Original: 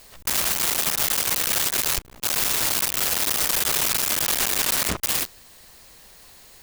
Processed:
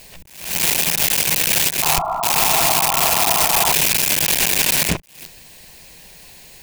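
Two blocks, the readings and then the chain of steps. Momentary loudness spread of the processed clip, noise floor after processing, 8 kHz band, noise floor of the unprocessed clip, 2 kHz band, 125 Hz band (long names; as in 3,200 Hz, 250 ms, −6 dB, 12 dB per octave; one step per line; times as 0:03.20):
5 LU, −43 dBFS, +4.5 dB, −49 dBFS, +6.5 dB, +8.5 dB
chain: sound drawn into the spectrogram noise, 0:01.82–0:03.73, 630–1,400 Hz −25 dBFS
thirty-one-band graphic EQ 160 Hz +9 dB, 1,250 Hz −11 dB, 2,500 Hz +6 dB
level that may rise only so fast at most 100 dB per second
level +5.5 dB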